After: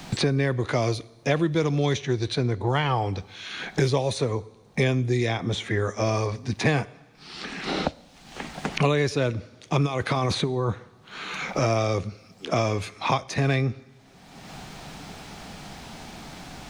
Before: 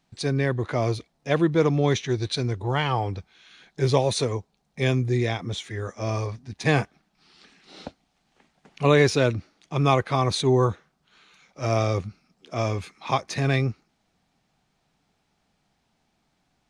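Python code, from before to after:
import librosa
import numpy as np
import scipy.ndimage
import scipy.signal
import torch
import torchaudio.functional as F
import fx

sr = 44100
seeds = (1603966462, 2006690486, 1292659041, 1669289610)

y = fx.over_compress(x, sr, threshold_db=-26.0, ratio=-1.0, at=(9.85, 10.69), fade=0.02)
y = fx.rev_double_slope(y, sr, seeds[0], early_s=0.7, late_s=2.0, knee_db=-27, drr_db=18.5)
y = fx.band_squash(y, sr, depth_pct=100)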